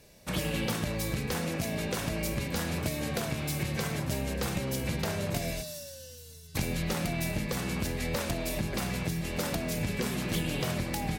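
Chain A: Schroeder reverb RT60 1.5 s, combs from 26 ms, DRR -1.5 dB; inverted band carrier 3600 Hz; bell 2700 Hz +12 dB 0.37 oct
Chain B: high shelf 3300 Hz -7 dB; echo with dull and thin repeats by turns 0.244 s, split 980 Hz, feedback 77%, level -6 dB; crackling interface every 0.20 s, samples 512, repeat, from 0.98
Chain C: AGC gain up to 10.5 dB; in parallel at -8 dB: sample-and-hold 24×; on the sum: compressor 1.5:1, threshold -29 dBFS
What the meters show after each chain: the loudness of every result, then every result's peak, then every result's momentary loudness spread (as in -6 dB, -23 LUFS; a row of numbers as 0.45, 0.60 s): -22.0, -32.5, -25.0 LUFS; -11.5, -18.5, -11.0 dBFS; 3, 3, 3 LU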